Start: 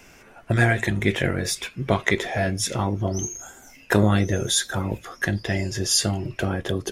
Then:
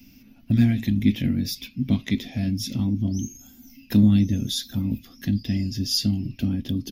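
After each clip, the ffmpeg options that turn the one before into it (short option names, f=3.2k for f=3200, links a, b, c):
-af "firequalizer=gain_entry='entry(170,0);entry(250,13);entry(370,-17);entry(1000,-21);entry(1500,-22);entry(2500,-7);entry(5000,0);entry(8100,-21);entry(14000,9)':delay=0.05:min_phase=1"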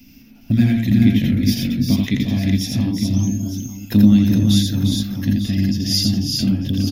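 -af "aecho=1:1:83|352|412|899:0.668|0.422|0.631|0.224,volume=3.5dB"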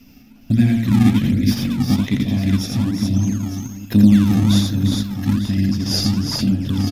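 -filter_complex "[0:a]asplit=2[a][b];[b]acrusher=samples=25:mix=1:aa=0.000001:lfo=1:lforange=40:lforate=1.2,volume=-8.5dB[c];[a][c]amix=inputs=2:normalize=0,aresample=32000,aresample=44100,volume=-2.5dB"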